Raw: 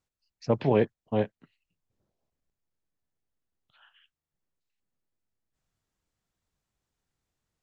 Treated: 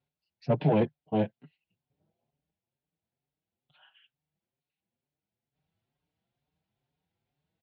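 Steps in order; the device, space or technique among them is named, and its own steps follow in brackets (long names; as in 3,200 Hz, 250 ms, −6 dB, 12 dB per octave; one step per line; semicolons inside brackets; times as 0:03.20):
barber-pole flanger into a guitar amplifier (barber-pole flanger 5.3 ms +2.2 Hz; soft clipping −23 dBFS, distortion −13 dB; loudspeaker in its box 88–3,800 Hz, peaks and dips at 150 Hz +8 dB, 740 Hz +4 dB, 1,200 Hz −9 dB, 1,800 Hz −5 dB)
level +4.5 dB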